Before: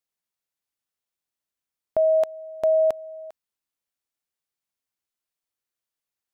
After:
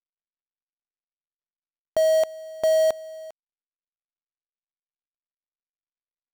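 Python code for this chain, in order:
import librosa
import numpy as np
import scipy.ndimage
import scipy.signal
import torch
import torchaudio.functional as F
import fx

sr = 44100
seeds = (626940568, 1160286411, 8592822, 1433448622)

y = fx.dead_time(x, sr, dead_ms=0.12)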